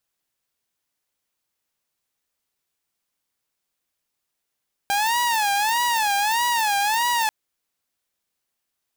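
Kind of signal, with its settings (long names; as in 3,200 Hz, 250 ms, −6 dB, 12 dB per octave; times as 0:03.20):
siren wail 800–968 Hz 1.6 per second saw −16.5 dBFS 2.39 s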